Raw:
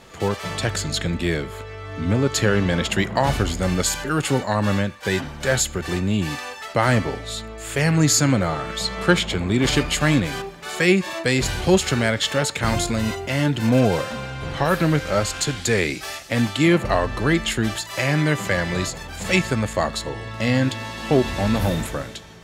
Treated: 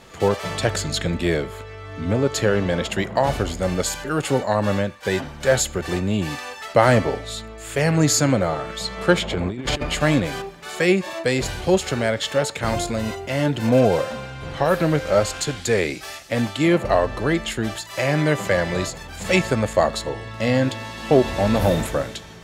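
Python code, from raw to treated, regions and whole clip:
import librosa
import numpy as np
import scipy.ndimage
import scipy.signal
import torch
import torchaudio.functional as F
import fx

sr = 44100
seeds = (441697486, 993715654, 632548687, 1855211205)

y = fx.chain(x, sr, fx.high_shelf(hz=3900.0, db=-8.0),
    fx.over_compress(threshold_db=-23.0, ratio=-0.5), at=(9.22, 10.0))
y = fx.dynamic_eq(y, sr, hz=570.0, q=1.2, threshold_db=-34.0, ratio=4.0, max_db=7)
y = fx.rider(y, sr, range_db=10, speed_s=2.0)
y = y * librosa.db_to_amplitude(-3.5)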